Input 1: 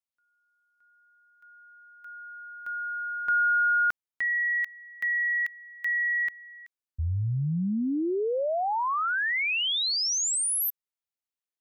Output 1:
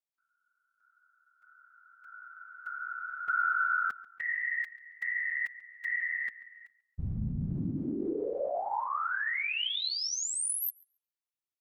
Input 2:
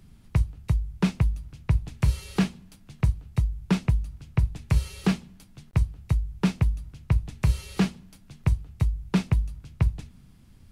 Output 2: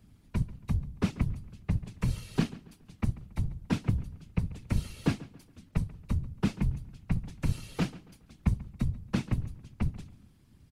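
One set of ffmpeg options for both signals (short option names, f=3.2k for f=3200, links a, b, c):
-filter_complex "[0:a]afftfilt=real='hypot(re,im)*cos(2*PI*random(0))':imag='hypot(re,im)*sin(2*PI*random(1))':win_size=512:overlap=0.75,asplit=2[a][b];[b]adelay=139,lowpass=f=3.6k:p=1,volume=-18dB,asplit=2[c][d];[d]adelay=139,lowpass=f=3.6k:p=1,volume=0.38,asplit=2[e][f];[f]adelay=139,lowpass=f=3.6k:p=1,volume=0.38[g];[a][c][e][g]amix=inputs=4:normalize=0"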